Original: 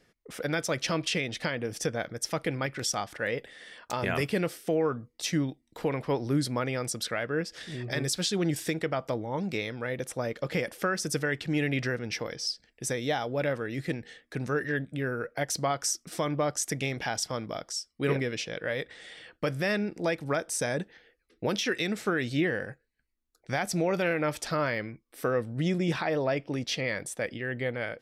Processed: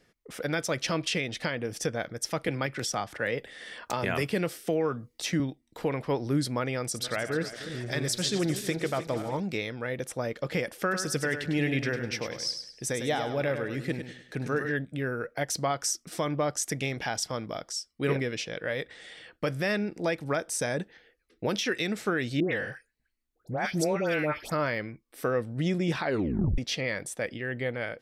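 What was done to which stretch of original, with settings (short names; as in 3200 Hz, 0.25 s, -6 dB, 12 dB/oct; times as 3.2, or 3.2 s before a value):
2.48–5.4 three-band squash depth 40%
6.78–9.4 regenerating reverse delay 0.153 s, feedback 69%, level -11 dB
10.81–14.7 feedback echo 0.101 s, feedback 36%, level -8 dB
22.4–24.52 dispersion highs, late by 0.13 s, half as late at 1600 Hz
26.03 tape stop 0.55 s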